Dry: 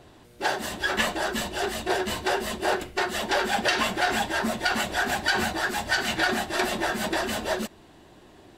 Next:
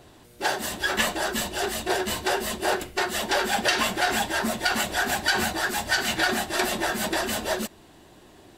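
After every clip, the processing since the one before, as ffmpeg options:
-af "highshelf=f=6500:g=8"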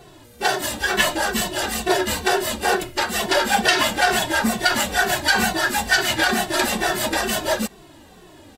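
-filter_complex "[0:a]asplit=2[s0][s1];[s1]adelay=2.2,afreqshift=-2.2[s2];[s0][s2]amix=inputs=2:normalize=1,volume=2.51"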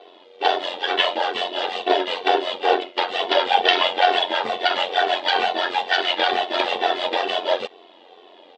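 -af "highpass=f=390:w=0.5412,highpass=f=390:w=1.3066,equalizer=f=460:t=q:w=4:g=8,equalizer=f=750:t=q:w=4:g=5,equalizer=f=1600:t=q:w=4:g=-7,equalizer=f=3300:t=q:w=4:g=8,lowpass=f=3800:w=0.5412,lowpass=f=3800:w=1.3066,tremolo=f=89:d=0.667,volume=1.26"

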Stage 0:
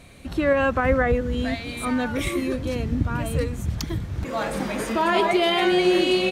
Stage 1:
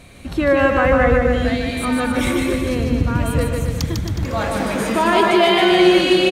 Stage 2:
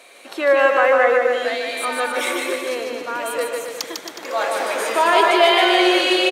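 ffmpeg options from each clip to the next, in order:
-af "aecho=1:1:150|270|366|442.8|504.2:0.631|0.398|0.251|0.158|0.1,volume=1.58"
-af "highpass=f=430:w=0.5412,highpass=f=430:w=1.3066,volume=1.19"

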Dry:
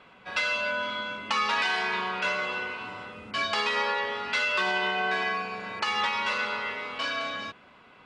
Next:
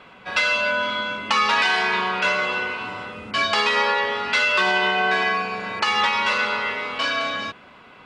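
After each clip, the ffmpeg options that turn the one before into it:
-af "acontrast=90"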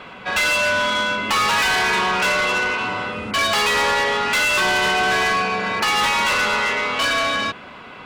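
-af "asoftclip=type=tanh:threshold=0.0596,volume=2.66"

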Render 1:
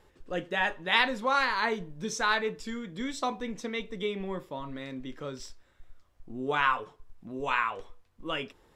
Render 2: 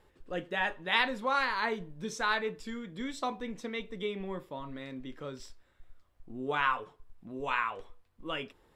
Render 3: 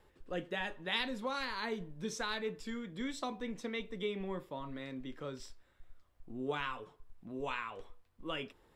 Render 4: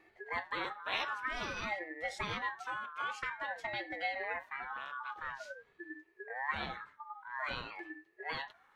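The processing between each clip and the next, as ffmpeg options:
-af "equalizer=f=6100:t=o:w=0.61:g=-4.5,volume=0.708"
-filter_complex "[0:a]acrossover=split=440|3000[s0][s1][s2];[s1]acompressor=threshold=0.0141:ratio=6[s3];[s0][s3][s2]amix=inputs=3:normalize=0,volume=0.841"
-af "afftfilt=real='real(if(lt(b,960),b+48*(1-2*mod(floor(b/48),2)),b),0)':imag='imag(if(lt(b,960),b+48*(1-2*mod(floor(b/48),2)),b),0)':win_size=2048:overlap=0.75,bass=f=250:g=-12,treble=f=4000:g=-8,aeval=exprs='val(0)*sin(2*PI*440*n/s+440*0.65/0.5*sin(2*PI*0.5*n/s))':c=same,volume=1.5"

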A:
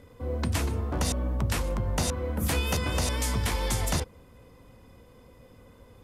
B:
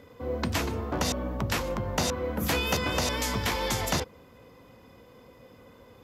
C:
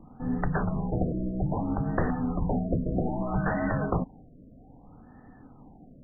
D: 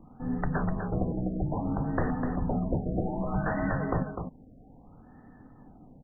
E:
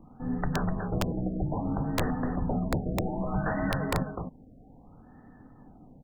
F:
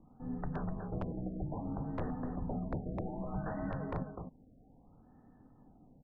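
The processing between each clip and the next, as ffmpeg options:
-af "highpass=f=200:p=1,equalizer=f=9300:t=o:w=0.39:g=-13.5,volume=1.5"
-af "afreqshift=-250,afftfilt=real='re*lt(b*sr/1024,670*pow(2000/670,0.5+0.5*sin(2*PI*0.62*pts/sr)))':imag='im*lt(b*sr/1024,670*pow(2000/670,0.5+0.5*sin(2*PI*0.62*pts/sr)))':win_size=1024:overlap=0.75,volume=1.33"
-af "aecho=1:1:251:0.447,volume=0.794"
-af "aeval=exprs='(mod(7.5*val(0)+1,2)-1)/7.5':c=same"
-af "lowpass=1200,volume=0.376"

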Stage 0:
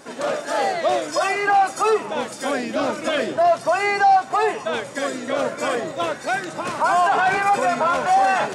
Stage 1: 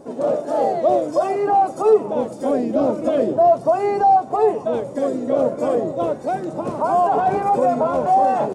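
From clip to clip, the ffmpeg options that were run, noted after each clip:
-af "firequalizer=gain_entry='entry(530,0);entry(1600,-22);entry(9800,-16)':delay=0.05:min_phase=1,volume=2"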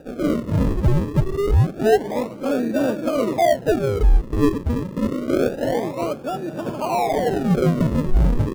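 -af "acrusher=samples=41:mix=1:aa=0.000001:lfo=1:lforange=41:lforate=0.27,tiltshelf=f=1100:g=7.5,volume=0.473"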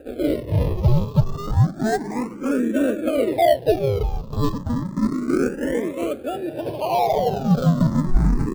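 -filter_complex "[0:a]asplit=2[s0][s1];[s1]acrusher=samples=8:mix=1:aa=0.000001:lfo=1:lforange=8:lforate=1.2,volume=0.316[s2];[s0][s2]amix=inputs=2:normalize=0,asplit=2[s3][s4];[s4]afreqshift=0.32[s5];[s3][s5]amix=inputs=2:normalize=1"

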